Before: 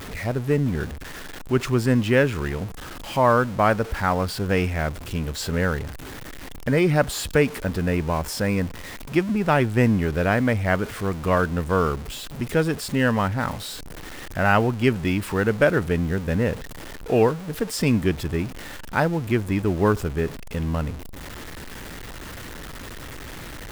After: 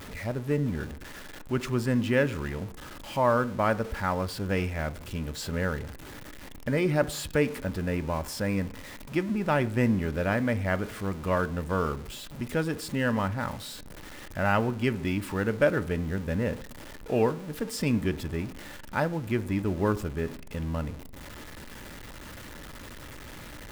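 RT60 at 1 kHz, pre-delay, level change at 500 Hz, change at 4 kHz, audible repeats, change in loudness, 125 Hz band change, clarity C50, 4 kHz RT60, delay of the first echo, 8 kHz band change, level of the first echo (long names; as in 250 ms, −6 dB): 0.60 s, 3 ms, −6.0 dB, −6.5 dB, no echo audible, −6.0 dB, −6.5 dB, 20.0 dB, 0.80 s, no echo audible, −6.5 dB, no echo audible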